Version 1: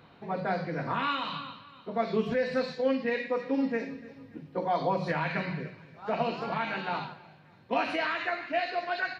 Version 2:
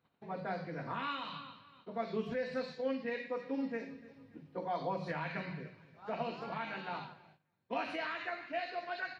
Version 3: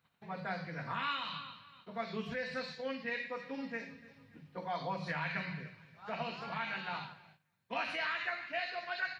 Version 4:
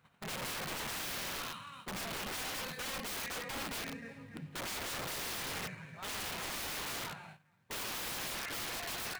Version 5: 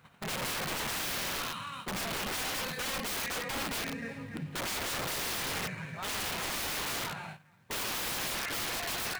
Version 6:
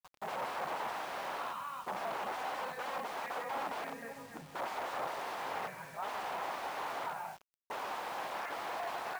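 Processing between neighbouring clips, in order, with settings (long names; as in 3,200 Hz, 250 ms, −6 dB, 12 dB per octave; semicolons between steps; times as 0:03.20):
noise gate −53 dBFS, range −16 dB; level −8.5 dB
drawn EQ curve 180 Hz 0 dB, 310 Hz −9 dB, 1,800 Hz +4 dB; level +1 dB
running median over 9 samples; in parallel at 0 dB: downward compressor 16 to 1, threshold −45 dBFS, peak gain reduction 14 dB; on the sum: wrap-around overflow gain 38.5 dB; level +3.5 dB
brickwall limiter −38.5 dBFS, peak gain reduction 3.5 dB; level +8.5 dB
resonant band-pass 810 Hz, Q 2; bit reduction 10 bits; level +5 dB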